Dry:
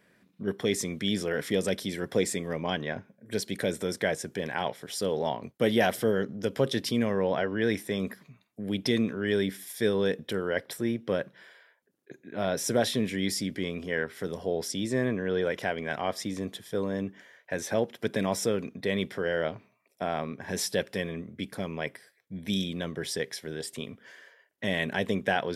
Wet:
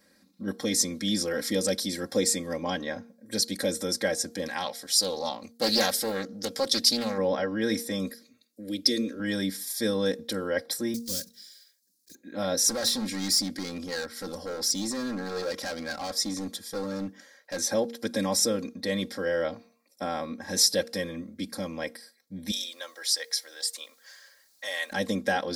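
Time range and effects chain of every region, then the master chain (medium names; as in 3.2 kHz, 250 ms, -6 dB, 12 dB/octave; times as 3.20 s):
4.48–7.18 s: tilt shelf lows -4 dB, about 1.4 kHz + loudspeaker Doppler distortion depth 0.37 ms
8.09–9.20 s: high-pass 62 Hz + static phaser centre 380 Hz, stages 4
10.94–12.15 s: block-companded coder 5-bit + FFT filter 120 Hz 0 dB, 360 Hz -13 dB, 550 Hz -17 dB, 800 Hz -26 dB, 5.4 kHz +8 dB
12.68–17.64 s: hard clipper -29 dBFS + peaking EQ 1.4 kHz +3 dB 0.31 oct
22.51–24.92 s: Bessel high-pass 830 Hz, order 4 + word length cut 12-bit, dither triangular
whole clip: resonant high shelf 3.6 kHz +6.5 dB, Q 3; comb 3.7 ms, depth 96%; de-hum 233.7 Hz, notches 3; trim -2 dB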